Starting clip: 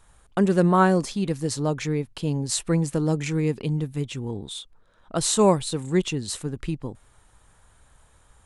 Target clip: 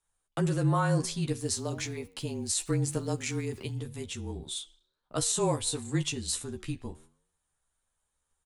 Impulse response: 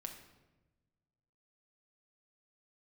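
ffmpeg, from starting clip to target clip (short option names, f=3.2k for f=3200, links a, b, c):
-filter_complex "[0:a]agate=range=-19dB:threshold=-47dB:ratio=16:detection=peak,highshelf=f=3.7k:g=10,alimiter=limit=-12dB:level=0:latency=1:release=44,asettb=1/sr,asplit=3[a][b][c];[a]atrim=end=1.404[d];[b]atrim=start=1.4:end=3.75,asetpts=PTS-STARTPTS,afade=t=in:d=0.004:c=qsin,afade=t=out:st=2.346:d=0.004:c=qsin,aeval=exprs='val(0)*gte(abs(val(0)),0.00422)':c=same[e];[c]atrim=start=3.746[f];[d][e]acrossfade=d=0.004:c1=hsin:c2=qsin[g];[g][f]acrossfade=d=0.004:c1=qsin:c2=hsin,flanger=delay=9.7:depth=4.2:regen=89:speed=0.96:shape=triangular,afreqshift=-30,asplit=2[h][i];[i]adelay=13,volume=-4dB[j];[h][j]amix=inputs=2:normalize=0,volume=-3.5dB"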